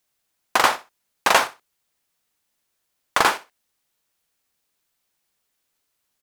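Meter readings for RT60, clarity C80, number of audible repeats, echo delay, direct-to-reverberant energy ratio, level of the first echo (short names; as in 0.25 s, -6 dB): none, none, 2, 63 ms, none, -17.0 dB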